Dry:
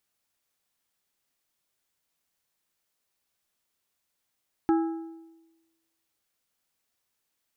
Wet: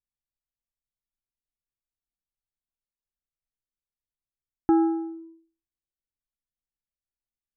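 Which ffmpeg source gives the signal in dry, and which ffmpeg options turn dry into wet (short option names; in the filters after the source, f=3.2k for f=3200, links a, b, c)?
-f lavfi -i "aevalsrc='0.126*pow(10,-3*t/1.11)*sin(2*PI*328*t)+0.0501*pow(10,-3*t/0.843)*sin(2*PI*820*t)+0.02*pow(10,-3*t/0.732)*sin(2*PI*1312*t)+0.00794*pow(10,-3*t/0.685)*sin(2*PI*1640*t)':d=1.55:s=44100"
-filter_complex "[0:a]anlmdn=0.01,lowpass=1.2k,asplit=2[a][b];[b]alimiter=limit=-23dB:level=0:latency=1,volume=2.5dB[c];[a][c]amix=inputs=2:normalize=0"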